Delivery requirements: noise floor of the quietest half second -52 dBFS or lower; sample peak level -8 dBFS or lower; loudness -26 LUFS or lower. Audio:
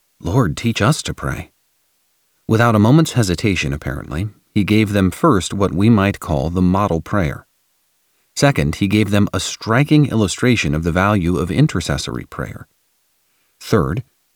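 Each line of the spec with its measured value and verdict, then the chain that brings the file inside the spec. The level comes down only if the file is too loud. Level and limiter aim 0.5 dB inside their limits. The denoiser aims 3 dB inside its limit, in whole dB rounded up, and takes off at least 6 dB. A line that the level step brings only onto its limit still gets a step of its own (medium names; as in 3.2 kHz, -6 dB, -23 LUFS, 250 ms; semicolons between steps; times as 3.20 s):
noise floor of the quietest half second -63 dBFS: pass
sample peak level -1.5 dBFS: fail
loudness -17.0 LUFS: fail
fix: trim -9.5 dB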